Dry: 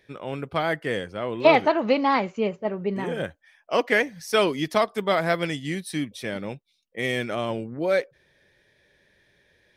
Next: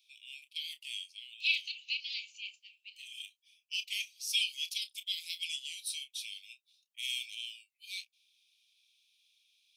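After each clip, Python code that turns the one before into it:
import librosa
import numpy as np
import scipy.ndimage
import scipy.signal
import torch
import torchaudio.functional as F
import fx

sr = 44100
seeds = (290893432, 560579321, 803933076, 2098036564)

y = scipy.signal.sosfilt(scipy.signal.butter(16, 2500.0, 'highpass', fs=sr, output='sos'), x)
y = fx.doubler(y, sr, ms=30.0, db=-12)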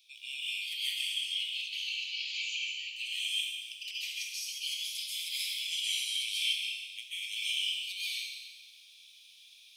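y = fx.over_compress(x, sr, threshold_db=-44.0, ratio=-0.5)
y = fx.rev_plate(y, sr, seeds[0], rt60_s=1.4, hf_ratio=0.95, predelay_ms=120, drr_db=-9.0)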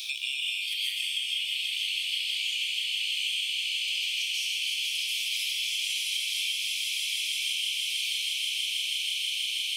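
y = fx.echo_swell(x, sr, ms=161, loudest=8, wet_db=-7.0)
y = fx.band_squash(y, sr, depth_pct=100)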